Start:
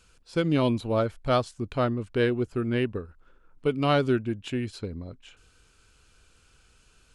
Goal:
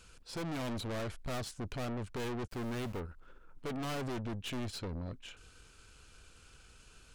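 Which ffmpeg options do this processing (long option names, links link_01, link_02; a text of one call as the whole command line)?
ffmpeg -i in.wav -filter_complex "[0:a]asplit=3[link_01][link_02][link_03];[link_01]afade=type=out:start_time=2.46:duration=0.02[link_04];[link_02]aeval=exprs='val(0)*gte(abs(val(0)),0.00398)':channel_layout=same,afade=type=in:start_time=2.46:duration=0.02,afade=type=out:start_time=2.99:duration=0.02[link_05];[link_03]afade=type=in:start_time=2.99:duration=0.02[link_06];[link_04][link_05][link_06]amix=inputs=3:normalize=0,aeval=exprs='(tanh(100*val(0)+0.45)-tanh(0.45))/100':channel_layout=same,volume=3.5dB" out.wav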